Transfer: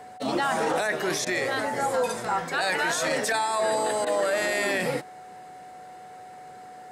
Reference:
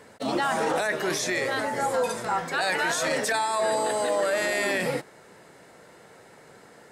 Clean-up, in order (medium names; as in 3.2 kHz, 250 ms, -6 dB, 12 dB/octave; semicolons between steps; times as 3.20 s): band-stop 740 Hz, Q 30; interpolate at 1.25/4.05 s, 14 ms